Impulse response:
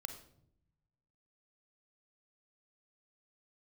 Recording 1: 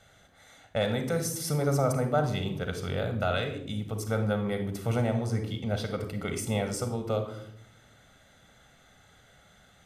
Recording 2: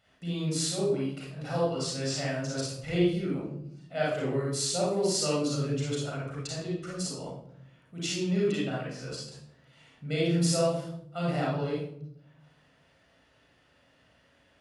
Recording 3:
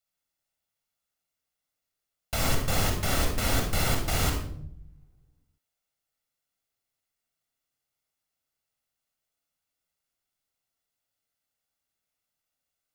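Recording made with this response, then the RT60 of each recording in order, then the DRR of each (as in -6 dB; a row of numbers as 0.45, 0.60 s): 1; 0.70, 0.70, 0.70 s; 7.0, -5.5, 2.5 dB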